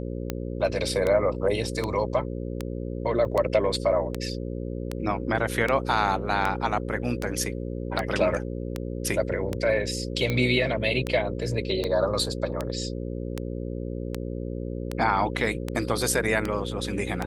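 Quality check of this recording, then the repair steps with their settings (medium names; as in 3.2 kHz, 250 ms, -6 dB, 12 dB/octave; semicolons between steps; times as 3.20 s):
buzz 60 Hz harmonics 9 -32 dBFS
tick 78 rpm -13 dBFS
3.25 s: dropout 2.4 ms
11.84 s: dropout 3.2 ms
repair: de-click; de-hum 60 Hz, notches 9; interpolate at 3.25 s, 2.4 ms; interpolate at 11.84 s, 3.2 ms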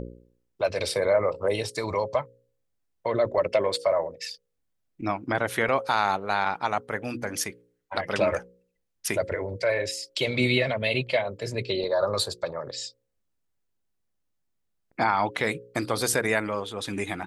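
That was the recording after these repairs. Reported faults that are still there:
nothing left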